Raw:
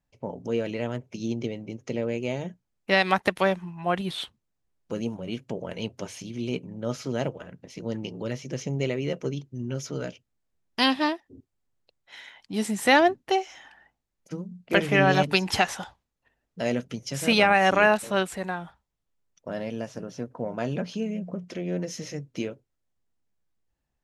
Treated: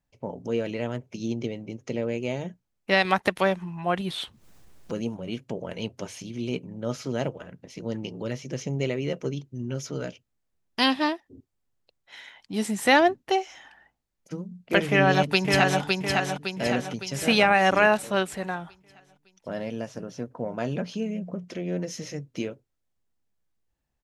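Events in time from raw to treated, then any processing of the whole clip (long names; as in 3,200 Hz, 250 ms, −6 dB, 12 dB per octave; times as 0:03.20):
0:03.05–0:05.04: upward compression, threshold −29 dBFS
0:14.88–0:15.81: delay throw 560 ms, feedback 50%, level −3 dB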